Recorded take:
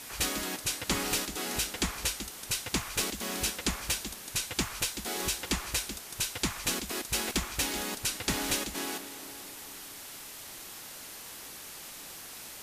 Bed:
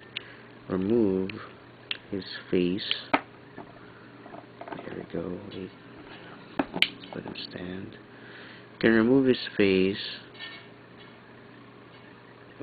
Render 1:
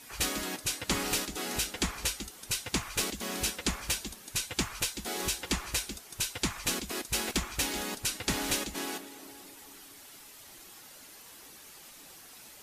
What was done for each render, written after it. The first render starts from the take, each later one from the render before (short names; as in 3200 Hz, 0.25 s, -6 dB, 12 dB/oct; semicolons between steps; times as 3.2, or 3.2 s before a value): denoiser 8 dB, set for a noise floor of -45 dBFS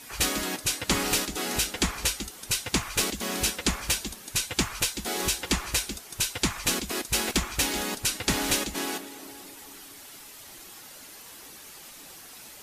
gain +5 dB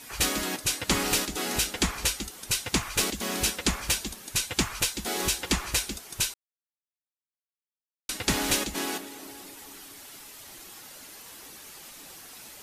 6.34–8.09 mute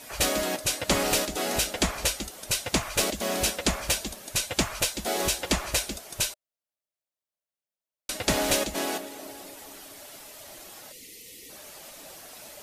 10.92–11.5 spectral gain 530–1800 Hz -23 dB; bell 610 Hz +12.5 dB 0.44 oct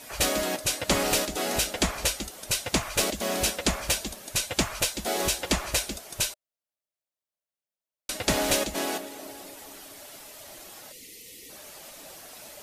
nothing audible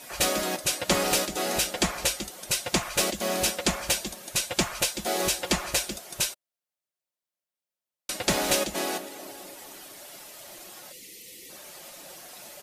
low shelf 66 Hz -9 dB; comb 5.6 ms, depth 34%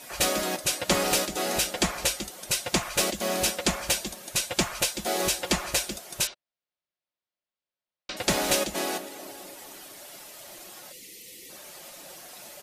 6.27–8.17 LPF 4800 Hz 24 dB/oct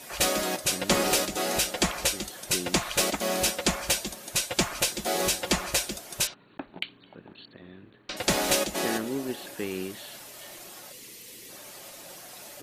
add bed -11 dB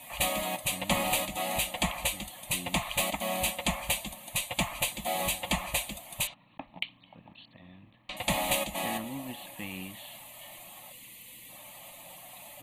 fixed phaser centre 1500 Hz, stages 6